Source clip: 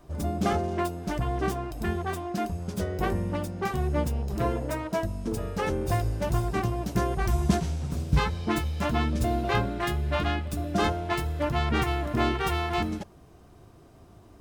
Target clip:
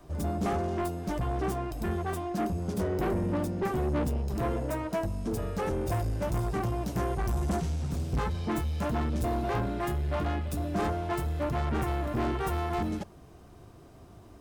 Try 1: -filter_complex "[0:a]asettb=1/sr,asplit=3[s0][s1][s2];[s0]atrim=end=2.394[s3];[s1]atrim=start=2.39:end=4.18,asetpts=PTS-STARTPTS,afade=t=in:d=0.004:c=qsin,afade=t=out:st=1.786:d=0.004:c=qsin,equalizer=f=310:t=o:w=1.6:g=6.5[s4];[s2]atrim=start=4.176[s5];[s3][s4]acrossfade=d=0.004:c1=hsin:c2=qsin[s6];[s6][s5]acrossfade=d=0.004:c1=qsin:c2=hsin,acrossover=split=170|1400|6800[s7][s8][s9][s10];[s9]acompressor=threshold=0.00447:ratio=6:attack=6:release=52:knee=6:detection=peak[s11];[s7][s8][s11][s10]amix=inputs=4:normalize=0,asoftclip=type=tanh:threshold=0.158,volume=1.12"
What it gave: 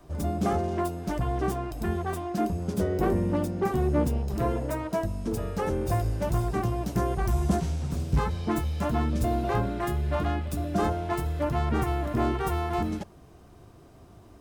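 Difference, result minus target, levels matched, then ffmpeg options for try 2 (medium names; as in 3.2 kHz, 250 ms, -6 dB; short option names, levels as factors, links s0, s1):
saturation: distortion -10 dB
-filter_complex "[0:a]asettb=1/sr,asplit=3[s0][s1][s2];[s0]atrim=end=2.394[s3];[s1]atrim=start=2.39:end=4.18,asetpts=PTS-STARTPTS,afade=t=in:d=0.004:c=qsin,afade=t=out:st=1.786:d=0.004:c=qsin,equalizer=f=310:t=o:w=1.6:g=6.5[s4];[s2]atrim=start=4.176[s5];[s3][s4]acrossfade=d=0.004:c1=hsin:c2=qsin[s6];[s6][s5]acrossfade=d=0.004:c1=qsin:c2=hsin,acrossover=split=170|1400|6800[s7][s8][s9][s10];[s9]acompressor=threshold=0.00447:ratio=6:attack=6:release=52:knee=6:detection=peak[s11];[s7][s8][s11][s10]amix=inputs=4:normalize=0,asoftclip=type=tanh:threshold=0.0531,volume=1.12"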